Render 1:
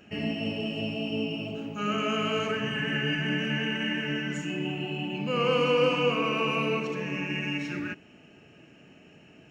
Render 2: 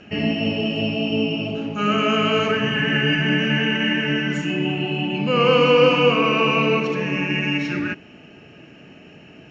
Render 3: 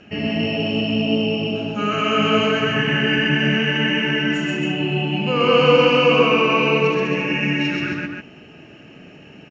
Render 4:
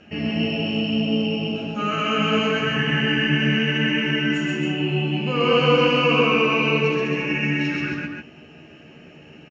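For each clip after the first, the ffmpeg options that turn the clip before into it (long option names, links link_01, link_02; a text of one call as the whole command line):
ffmpeg -i in.wav -af "lowpass=frequency=6000:width=0.5412,lowpass=frequency=6000:width=1.3066,volume=9dB" out.wav
ffmpeg -i in.wav -af "aecho=1:1:128.3|271.1:0.891|0.562,volume=-1.5dB" out.wav
ffmpeg -i in.wav -filter_complex "[0:a]asplit=2[link_01][link_02];[link_02]adelay=13,volume=-5dB[link_03];[link_01][link_03]amix=inputs=2:normalize=0,volume=-3.5dB" out.wav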